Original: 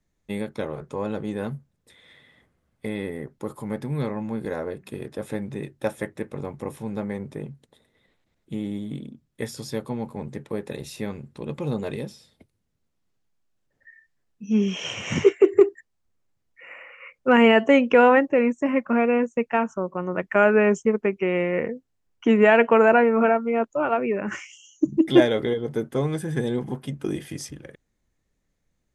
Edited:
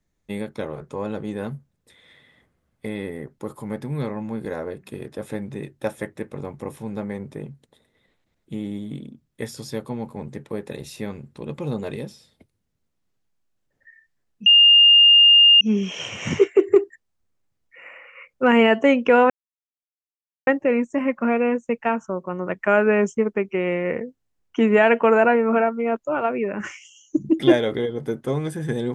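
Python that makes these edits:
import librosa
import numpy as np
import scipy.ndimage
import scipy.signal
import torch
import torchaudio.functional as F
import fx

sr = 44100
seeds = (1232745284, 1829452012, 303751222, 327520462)

y = fx.edit(x, sr, fx.insert_tone(at_s=14.46, length_s=1.15, hz=2820.0, db=-8.5),
    fx.insert_silence(at_s=18.15, length_s=1.17), tone=tone)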